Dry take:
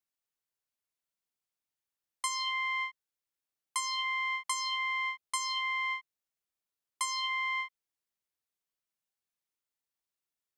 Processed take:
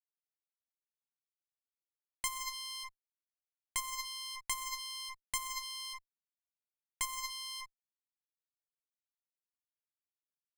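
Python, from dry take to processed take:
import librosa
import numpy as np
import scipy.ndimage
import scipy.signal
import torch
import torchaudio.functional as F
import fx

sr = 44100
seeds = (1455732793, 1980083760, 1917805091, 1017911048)

y = fx.backlash(x, sr, play_db=-32.0)
y = fx.cheby_harmonics(y, sr, harmonics=(7,), levels_db=(-11,), full_scale_db=-19.5)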